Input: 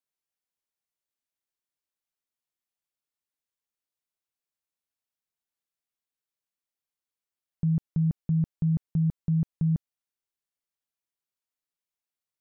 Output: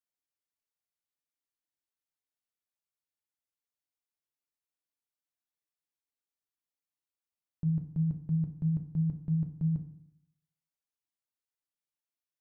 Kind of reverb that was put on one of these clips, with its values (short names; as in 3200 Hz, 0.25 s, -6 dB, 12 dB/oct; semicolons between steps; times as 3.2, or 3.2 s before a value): FDN reverb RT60 0.67 s, low-frequency decay 1.2×, high-frequency decay 0.6×, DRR 5.5 dB; gain -7 dB